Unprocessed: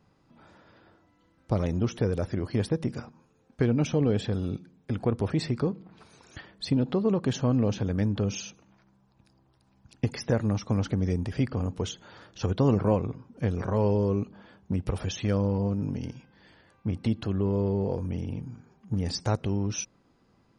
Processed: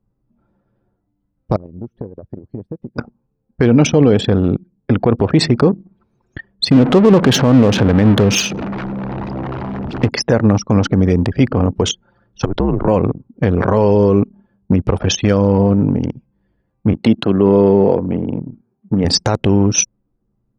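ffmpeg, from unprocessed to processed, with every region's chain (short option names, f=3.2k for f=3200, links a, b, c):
-filter_complex "[0:a]asettb=1/sr,asplit=3[a][b][c];[a]atrim=end=1.564[d];[b]atrim=start=1.56:end=2.98,asetpts=PTS-STARTPTS,afade=t=in:d=0.004:c=qsin,afade=t=out:st=1.416:d=0.004:c=qsin,acompressor=threshold=-37dB:ratio=10:attack=3.2:release=140:knee=1:detection=peak,agate=range=-33dB:threshold=-39dB:ratio=3:release=100:detection=peak[e];[c]atrim=start=2.976[f];[d][e]acrossfade=d=0.004:c1=hsin:c2=qsin[g];[g][f]acrossfade=d=0.004:c1=qsin:c2=hsin,asettb=1/sr,asplit=3[h][i][j];[h]atrim=end=6.714[k];[i]atrim=start=6.71:end=10.09,asetpts=PTS-STARTPTS,afade=t=in:d=0.004:c=qsin,afade=t=out:st=3.376:d=0.004:c=qsin,aeval=exprs='val(0)+0.5*0.0251*sgn(val(0))':c=same,adynamicsmooth=sensitivity=5.5:basefreq=3.4k[l];[j]atrim=start=10.086[m];[k][l]acrossfade=d=0.004:c1=hsin:c2=qsin[n];[n][m]acrossfade=d=0.004:c1=qsin:c2=hsin,asettb=1/sr,asplit=3[o][p][q];[o]atrim=end=12.454[r];[p]atrim=start=12.45:end=12.88,asetpts=PTS-STARTPTS,afade=t=in:d=0.004:c=qsin,afade=t=out:st=0.426:d=0.004:c=qsin,highshelf=f=3.6k:g=-5,acompressor=threshold=-28dB:ratio=5:attack=3.2:release=140:knee=1:detection=peak,afreqshift=-76[s];[q]atrim=start=12.876[t];[r][s]acrossfade=d=0.004:c1=hsin:c2=qsin[u];[u][t]acrossfade=d=0.004:c1=qsin:c2=hsin,asettb=1/sr,asplit=3[v][w][x];[v]atrim=end=16.934[y];[w]atrim=start=16.93:end=19.05,asetpts=PTS-STARTPTS,afade=t=in:d=0.004:c=qsin,afade=t=out:st=2.116:d=0.004:c=qsin,highpass=150,equalizer=f=5.6k:t=o:w=0.21:g=-7[z];[x]atrim=start=19.046[aa];[y][z]acrossfade=d=0.004:c1=hsin:c2=qsin[ab];[ab][aa]acrossfade=d=0.004:c1=qsin:c2=hsin,anlmdn=2.51,lowshelf=f=130:g=-9.5,alimiter=level_in=20.5dB:limit=-1dB:release=50:level=0:latency=1,volume=-1dB"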